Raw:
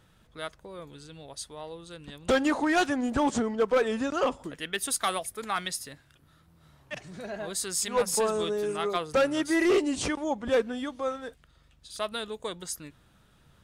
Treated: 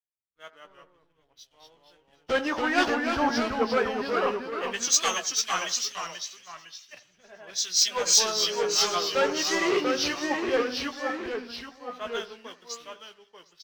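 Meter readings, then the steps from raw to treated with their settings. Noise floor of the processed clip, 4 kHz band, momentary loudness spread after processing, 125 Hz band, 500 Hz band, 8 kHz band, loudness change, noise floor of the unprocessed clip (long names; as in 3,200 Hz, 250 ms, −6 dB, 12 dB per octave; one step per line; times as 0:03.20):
−68 dBFS, +9.0 dB, 17 LU, −5.0 dB, −1.0 dB, +8.0 dB, +3.0 dB, −62 dBFS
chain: hearing-aid frequency compression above 2,700 Hz 1.5 to 1
low-pass that shuts in the quiet parts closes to 2,500 Hz, open at −22 dBFS
spectral tilt +3 dB per octave
leveller curve on the samples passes 2
delay with pitch and tempo change per echo 149 ms, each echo −1 semitone, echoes 2
double-tracking delay 17 ms −11 dB
echo with a time of its own for lows and highs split 2,000 Hz, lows 84 ms, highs 764 ms, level −14.5 dB
multiband upward and downward expander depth 100%
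level −8 dB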